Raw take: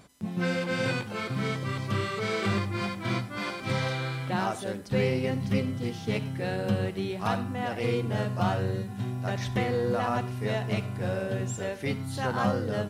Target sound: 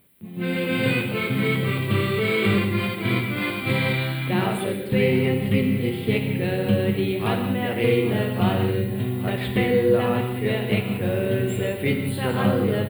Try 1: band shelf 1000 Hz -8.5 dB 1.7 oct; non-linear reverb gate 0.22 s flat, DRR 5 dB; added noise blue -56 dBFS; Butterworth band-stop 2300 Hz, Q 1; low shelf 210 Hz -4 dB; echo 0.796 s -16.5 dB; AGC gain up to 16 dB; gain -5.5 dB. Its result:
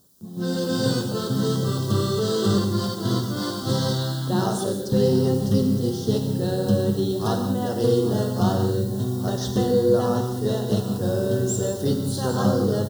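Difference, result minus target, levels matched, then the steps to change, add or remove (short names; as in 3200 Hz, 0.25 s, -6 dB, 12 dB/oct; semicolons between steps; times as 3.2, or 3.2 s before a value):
2000 Hz band -13.0 dB
change: Butterworth band-stop 5900 Hz, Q 1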